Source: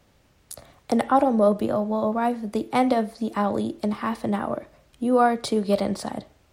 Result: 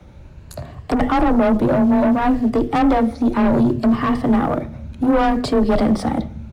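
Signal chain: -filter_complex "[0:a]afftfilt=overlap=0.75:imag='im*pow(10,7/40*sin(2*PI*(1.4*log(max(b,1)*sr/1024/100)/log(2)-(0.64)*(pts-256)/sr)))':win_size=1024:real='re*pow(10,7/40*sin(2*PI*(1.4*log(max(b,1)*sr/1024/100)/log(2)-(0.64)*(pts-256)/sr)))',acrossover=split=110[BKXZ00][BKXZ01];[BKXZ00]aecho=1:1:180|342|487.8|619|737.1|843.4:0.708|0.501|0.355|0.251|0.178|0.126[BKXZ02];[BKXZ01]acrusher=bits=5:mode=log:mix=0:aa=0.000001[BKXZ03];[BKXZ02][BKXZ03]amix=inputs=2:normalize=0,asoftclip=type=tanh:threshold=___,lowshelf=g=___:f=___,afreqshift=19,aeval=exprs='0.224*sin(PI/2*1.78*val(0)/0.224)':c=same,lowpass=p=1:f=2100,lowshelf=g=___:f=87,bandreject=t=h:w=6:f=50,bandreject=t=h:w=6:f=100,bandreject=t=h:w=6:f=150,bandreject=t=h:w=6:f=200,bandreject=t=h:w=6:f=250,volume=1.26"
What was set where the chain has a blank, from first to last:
0.075, 9, 210, 4.5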